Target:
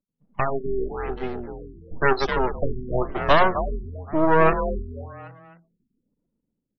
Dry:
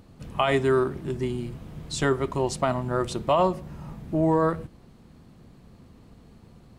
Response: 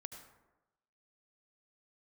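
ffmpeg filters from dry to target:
-filter_complex "[0:a]afftfilt=real='re*gte(hypot(re,im),0.0126)':imag='im*gte(hypot(re,im),0.0126)':win_size=1024:overlap=0.75,acrossover=split=160 6800:gain=0.0794 1 0.0708[s0][s1][s2];[s0][s1][s2]amix=inputs=3:normalize=0,asplit=2[s3][s4];[s4]adynamicsmooth=sensitivity=5:basefreq=2600,volume=0.841[s5];[s3][s5]amix=inputs=2:normalize=0,aemphasis=mode=production:type=riaa,bandreject=f=520:w=12,acrossover=split=160|4200[s6][s7][s8];[s7]aeval=exprs='max(val(0),0)':c=same[s9];[s8]acrusher=bits=5:dc=4:mix=0:aa=0.000001[s10];[s6][s9][s10]amix=inputs=3:normalize=0,afftdn=nr=21:nf=-35,dynaudnorm=f=220:g=9:m=4.47,asplit=5[s11][s12][s13][s14][s15];[s12]adelay=260,afreqshift=42,volume=0.398[s16];[s13]adelay=520,afreqshift=84,volume=0.151[s17];[s14]adelay=780,afreqshift=126,volume=0.0575[s18];[s15]adelay=1040,afreqshift=168,volume=0.0219[s19];[s11][s16][s17][s18][s19]amix=inputs=5:normalize=0,afftfilt=real='re*lt(b*sr/1024,390*pow(6200/390,0.5+0.5*sin(2*PI*0.97*pts/sr)))':imag='im*lt(b*sr/1024,390*pow(6200/390,0.5+0.5*sin(2*PI*0.97*pts/sr)))':win_size=1024:overlap=0.75,volume=0.891"

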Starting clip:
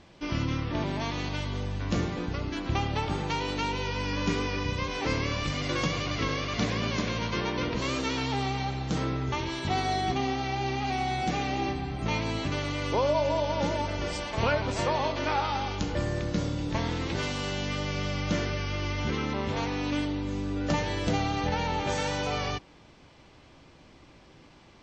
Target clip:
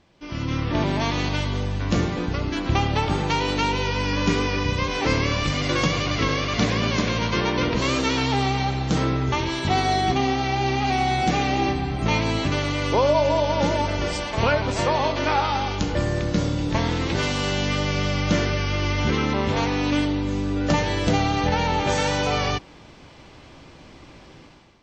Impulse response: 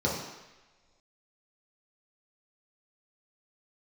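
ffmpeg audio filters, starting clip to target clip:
-af "dynaudnorm=f=140:g=7:m=5.01,volume=0.531"

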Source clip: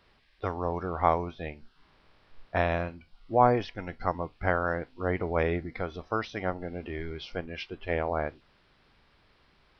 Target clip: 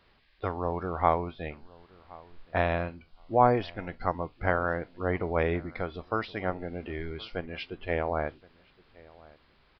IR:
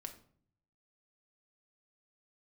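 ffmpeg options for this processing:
-filter_complex "[0:a]asplit=2[s0][s1];[s1]adelay=1070,lowpass=f=2100:p=1,volume=0.0708,asplit=2[s2][s3];[s3]adelay=1070,lowpass=f=2100:p=1,volume=0.16[s4];[s2][s4]amix=inputs=2:normalize=0[s5];[s0][s5]amix=inputs=2:normalize=0,aresample=11025,aresample=44100"

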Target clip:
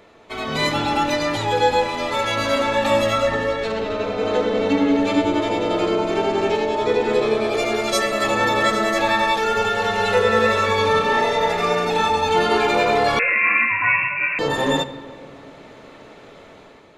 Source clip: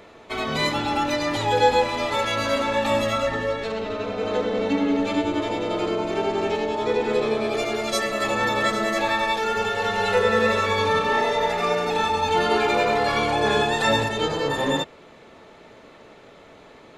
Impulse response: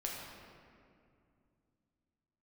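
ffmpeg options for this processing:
-filter_complex "[0:a]dynaudnorm=f=200:g=5:m=2.24,asplit=2[s0][s1];[1:a]atrim=start_sample=2205[s2];[s1][s2]afir=irnorm=-1:irlink=0,volume=0.282[s3];[s0][s3]amix=inputs=2:normalize=0,asettb=1/sr,asplit=3[s4][s5][s6];[s4]atrim=end=13.194[s7];[s5]atrim=start=13.19:end=14.39,asetpts=PTS-STARTPTS,afade=t=in:d=0.004:c=qsin,afade=t=out:st=1.196:d=0.004:c=qsin,lowpass=f=2400:t=q:w=0.5098,lowpass=f=2400:t=q:w=0.6013,lowpass=f=2400:t=q:w=0.9,lowpass=f=2400:t=q:w=2.563,afreqshift=-2800[s8];[s6]atrim=start=14.386[s9];[s7][s8]acrossfade=d=0.004:c1=hsin:c2=qsin[s10];[s10][s9]acrossfade=d=0.004:c1=qsin:c2=hsin,volume=0.596"

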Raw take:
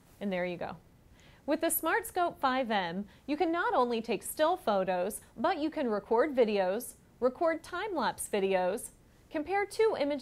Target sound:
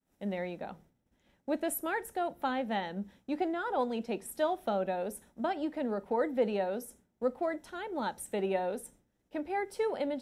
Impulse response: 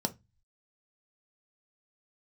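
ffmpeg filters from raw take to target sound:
-filter_complex "[0:a]agate=range=0.0224:threshold=0.00316:ratio=3:detection=peak,asplit=2[s0][s1];[1:a]atrim=start_sample=2205[s2];[s1][s2]afir=irnorm=-1:irlink=0,volume=0.237[s3];[s0][s3]amix=inputs=2:normalize=0,volume=0.473"

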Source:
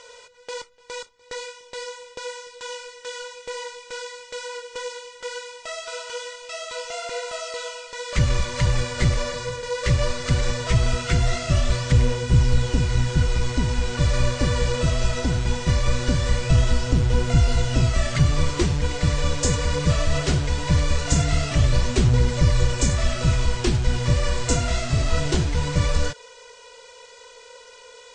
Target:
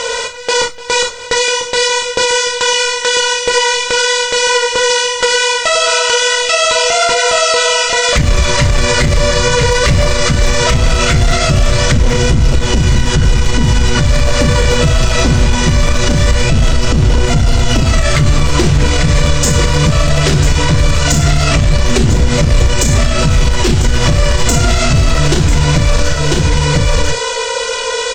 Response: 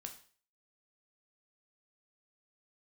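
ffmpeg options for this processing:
-filter_complex "[0:a]areverse,acompressor=mode=upward:threshold=0.01:ratio=2.5,areverse,aeval=exprs='clip(val(0),-1,0.126)':c=same,aecho=1:1:996:0.251[s0];[1:a]atrim=start_sample=2205,atrim=end_sample=3528[s1];[s0][s1]afir=irnorm=-1:irlink=0,acompressor=threshold=0.0158:ratio=3,alimiter=level_in=42.2:limit=0.891:release=50:level=0:latency=1,volume=0.891"

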